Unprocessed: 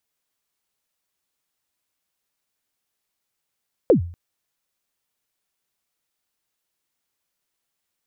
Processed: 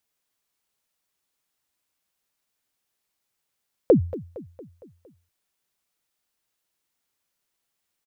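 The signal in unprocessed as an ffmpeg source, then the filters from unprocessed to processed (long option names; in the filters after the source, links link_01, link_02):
-f lavfi -i "aevalsrc='0.422*pow(10,-3*t/0.46)*sin(2*PI*(570*0.109/log(86/570)*(exp(log(86/570)*min(t,0.109)/0.109)-1)+86*max(t-0.109,0)))':duration=0.24:sample_rate=44100"
-af "aecho=1:1:230|460|690|920|1150:0.141|0.0777|0.0427|0.0235|0.0129"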